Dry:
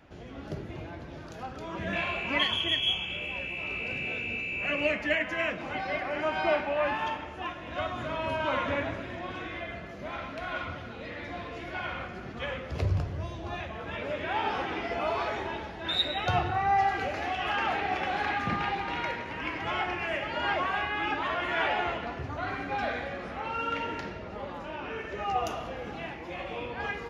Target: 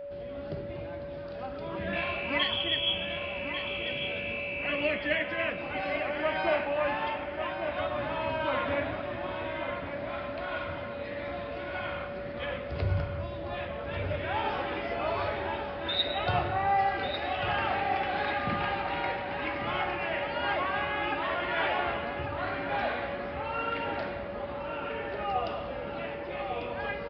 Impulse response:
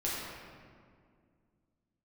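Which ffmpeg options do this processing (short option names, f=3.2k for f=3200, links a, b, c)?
-filter_complex "[0:a]aresample=11025,aresample=44100,asplit=2[a][b];[b]adelay=1145,lowpass=f=3.5k:p=1,volume=-7dB,asplit=2[c][d];[d]adelay=1145,lowpass=f=3.5k:p=1,volume=0.49,asplit=2[e][f];[f]adelay=1145,lowpass=f=3.5k:p=1,volume=0.49,asplit=2[g][h];[h]adelay=1145,lowpass=f=3.5k:p=1,volume=0.49,asplit=2[i][j];[j]adelay=1145,lowpass=f=3.5k:p=1,volume=0.49,asplit=2[k][l];[l]adelay=1145,lowpass=f=3.5k:p=1,volume=0.49[m];[a][c][e][g][i][k][m]amix=inputs=7:normalize=0,aeval=exprs='val(0)+0.0158*sin(2*PI*570*n/s)':c=same,volume=-1.5dB"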